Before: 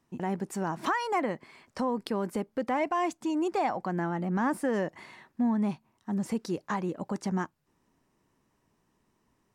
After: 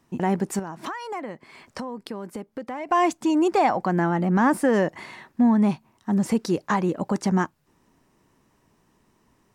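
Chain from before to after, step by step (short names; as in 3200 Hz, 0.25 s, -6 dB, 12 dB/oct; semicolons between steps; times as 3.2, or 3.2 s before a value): 0.59–2.89 compressor 3:1, threshold -43 dBFS, peak gain reduction 14 dB; gain +8.5 dB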